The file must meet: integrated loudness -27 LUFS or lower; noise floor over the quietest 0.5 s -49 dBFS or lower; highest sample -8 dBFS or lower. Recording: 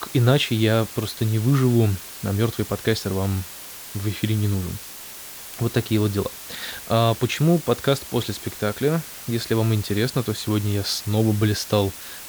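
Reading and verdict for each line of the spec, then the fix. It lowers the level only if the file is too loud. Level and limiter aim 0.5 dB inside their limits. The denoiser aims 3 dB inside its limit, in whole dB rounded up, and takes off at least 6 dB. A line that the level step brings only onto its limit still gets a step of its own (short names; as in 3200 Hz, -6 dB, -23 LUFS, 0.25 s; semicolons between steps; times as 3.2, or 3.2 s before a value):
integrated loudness -22.5 LUFS: fail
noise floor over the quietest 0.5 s -38 dBFS: fail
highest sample -5.0 dBFS: fail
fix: denoiser 9 dB, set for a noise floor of -38 dBFS; gain -5 dB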